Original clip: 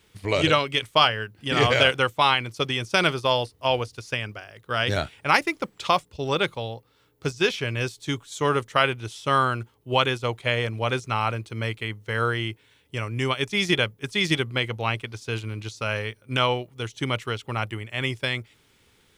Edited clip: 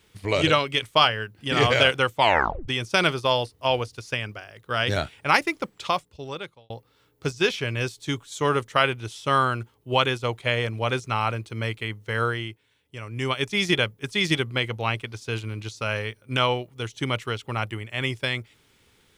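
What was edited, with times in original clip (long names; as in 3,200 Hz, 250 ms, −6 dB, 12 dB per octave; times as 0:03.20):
0:02.17: tape stop 0.51 s
0:05.56–0:06.70: fade out
0:12.22–0:13.36: duck −8 dB, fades 0.36 s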